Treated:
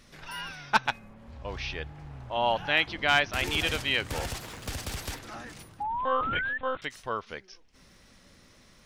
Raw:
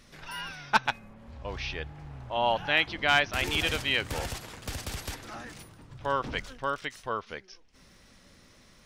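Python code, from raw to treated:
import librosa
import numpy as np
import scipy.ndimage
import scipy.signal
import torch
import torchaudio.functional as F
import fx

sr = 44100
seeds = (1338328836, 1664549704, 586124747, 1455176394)

y = fx.zero_step(x, sr, step_db=-47.5, at=(4.14, 5.19))
y = fx.lpc_monotone(y, sr, seeds[0], pitch_hz=260.0, order=16, at=(5.83, 6.82))
y = fx.spec_paint(y, sr, seeds[1], shape='rise', start_s=5.8, length_s=0.78, low_hz=810.0, high_hz=1800.0, level_db=-31.0)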